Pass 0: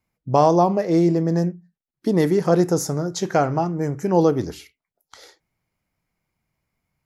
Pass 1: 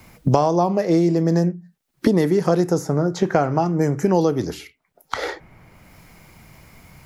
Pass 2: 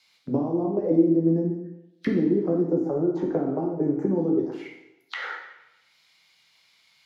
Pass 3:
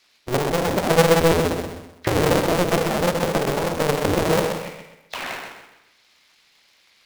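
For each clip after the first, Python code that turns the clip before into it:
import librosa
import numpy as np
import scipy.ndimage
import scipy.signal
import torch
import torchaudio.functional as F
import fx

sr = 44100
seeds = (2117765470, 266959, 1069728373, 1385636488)

y1 = fx.band_squash(x, sr, depth_pct=100)
y2 = fx.auto_wah(y1, sr, base_hz=280.0, top_hz=4200.0, q=3.9, full_db=-14.5, direction='down')
y2 = fx.rev_plate(y2, sr, seeds[0], rt60_s=0.89, hf_ratio=0.95, predelay_ms=0, drr_db=-0.5)
y3 = fx.cycle_switch(y2, sr, every=2, mode='inverted')
y3 = fx.echo_feedback(y3, sr, ms=128, feedback_pct=33, wet_db=-6.5)
y3 = y3 * librosa.db_to_amplitude(2.5)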